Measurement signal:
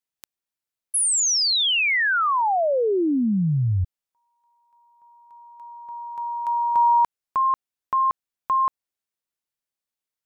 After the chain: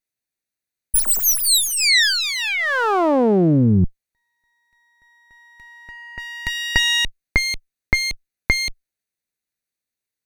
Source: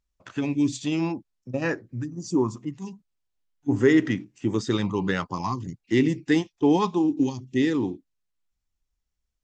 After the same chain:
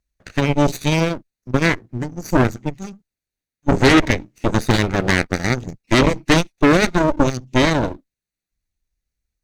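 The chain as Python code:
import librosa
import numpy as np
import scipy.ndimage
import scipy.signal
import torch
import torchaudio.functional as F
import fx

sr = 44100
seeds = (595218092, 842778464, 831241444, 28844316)

y = fx.lower_of_two(x, sr, delay_ms=0.47)
y = fx.cheby_harmonics(y, sr, harmonics=(5, 8), levels_db=(-42, -8), full_scale_db=-7.5)
y = y * 10.0 ** (3.5 / 20.0)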